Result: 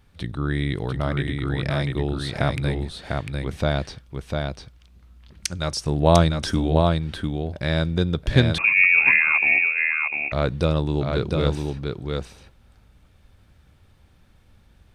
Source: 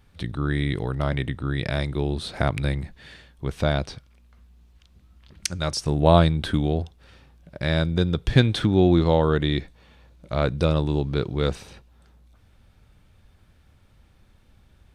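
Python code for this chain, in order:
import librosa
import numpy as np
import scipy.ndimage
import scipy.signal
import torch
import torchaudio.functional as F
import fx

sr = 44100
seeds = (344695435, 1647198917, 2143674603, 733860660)

p1 = x + fx.echo_single(x, sr, ms=699, db=-4.0, dry=0)
y = fx.freq_invert(p1, sr, carrier_hz=2600, at=(8.58, 10.32))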